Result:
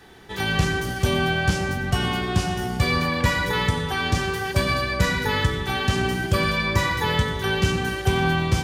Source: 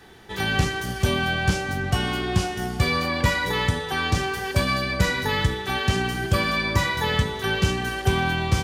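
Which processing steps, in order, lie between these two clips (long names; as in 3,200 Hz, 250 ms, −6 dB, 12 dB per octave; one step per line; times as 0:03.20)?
dense smooth reverb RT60 0.8 s, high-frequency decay 0.3×, pre-delay 80 ms, DRR 7 dB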